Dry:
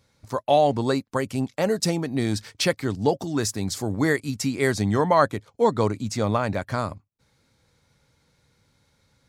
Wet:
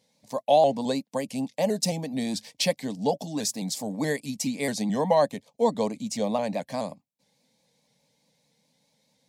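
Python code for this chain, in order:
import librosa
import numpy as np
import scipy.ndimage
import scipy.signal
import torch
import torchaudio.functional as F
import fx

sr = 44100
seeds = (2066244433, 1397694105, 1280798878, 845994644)

y = scipy.signal.sosfilt(scipy.signal.butter(2, 160.0, 'highpass', fs=sr, output='sos'), x)
y = fx.fixed_phaser(y, sr, hz=360.0, stages=6)
y = fx.vibrato_shape(y, sr, shape='saw_up', rate_hz=4.7, depth_cents=100.0)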